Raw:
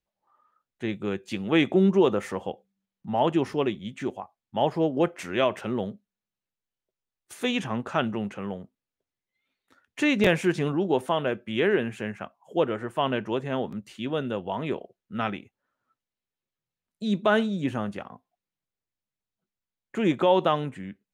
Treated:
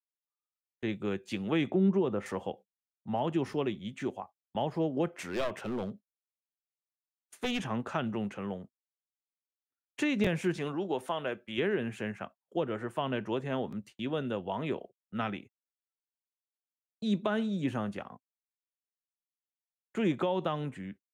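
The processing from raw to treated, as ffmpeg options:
-filter_complex "[0:a]asettb=1/sr,asplit=3[s0][s1][s2];[s0]atrim=end=1.704[s3];[s1]atrim=start=1.7:end=2.26,asetpts=PTS-STARTPTS,afade=t=in:d=0.004:c=qsin,afade=t=out:st=0.556:d=0.004:c=qsin,aemphasis=mode=reproduction:type=75kf[s4];[s2]atrim=start=2.256[s5];[s3][s4]acrossfade=d=0.004:c1=hsin:c2=qsin[s6];[s6][s5]acrossfade=d=0.004:c1=qsin:c2=hsin,asettb=1/sr,asplit=3[s7][s8][s9];[s7]atrim=end=5.174[s10];[s8]atrim=start=5.17:end=7.61,asetpts=PTS-STARTPTS,afade=t=in:d=0.004:c=qsin,afade=t=out:st=2.436:d=0.004:c=qsin,aeval=exprs='clip(val(0),-1,0.0398)':c=same[s11];[s9]atrim=start=7.606[s12];[s10][s11]acrossfade=d=0.004:c1=hsin:c2=qsin[s13];[s13][s12]acrossfade=d=0.004:c1=qsin:c2=hsin,asettb=1/sr,asplit=3[s14][s15][s16];[s14]atrim=end=10.574[s17];[s15]atrim=start=10.57:end=11.58,asetpts=PTS-STARTPTS,afade=t=in:d=0.004:c=qsin,afade=t=out:st=1.006:d=0.004:c=qsin,lowshelf=f=330:g=-9[s18];[s16]atrim=start=11.576[s19];[s17][s18]acrossfade=d=0.004:c1=hsin:c2=qsin[s20];[s20][s19]acrossfade=d=0.004:c1=qsin:c2=hsin,agate=range=0.0141:threshold=0.00708:ratio=16:detection=peak,acrossover=split=240[s21][s22];[s22]acompressor=threshold=0.0562:ratio=6[s23];[s21][s23]amix=inputs=2:normalize=0,volume=0.668"

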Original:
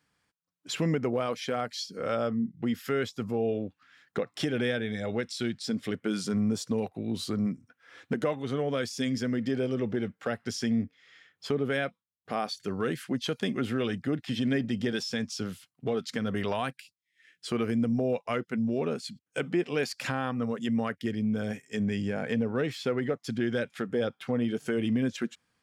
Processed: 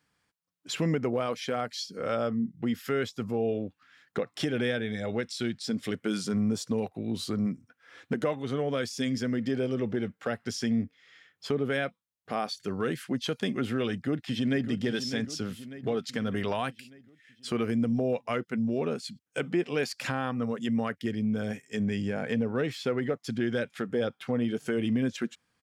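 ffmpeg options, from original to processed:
-filter_complex "[0:a]asettb=1/sr,asplit=3[s0][s1][s2];[s0]atrim=end=5.784[s3];[s1]atrim=start=5.78:end=6.18,asetpts=PTS-STARTPTS,afade=t=in:d=0.004:c=qsin,afade=t=out:st=0.396:d=0.004:c=qsin,equalizer=f=8900:w=0.39:g=4.5[s4];[s2]atrim=start=6.176[s5];[s3][s4]acrossfade=d=0.004:c1=hsin:c2=qsin[s6];[s6][s5]acrossfade=d=0.004:c1=qsin:c2=hsin,asplit=2[s7][s8];[s8]afade=t=in:st=13.96:d=0.01,afade=t=out:st=14.69:d=0.01,aecho=0:1:600|1200|1800|2400|3000|3600:0.298538|0.164196|0.0903078|0.0496693|0.0273181|0.015025[s9];[s7][s9]amix=inputs=2:normalize=0"

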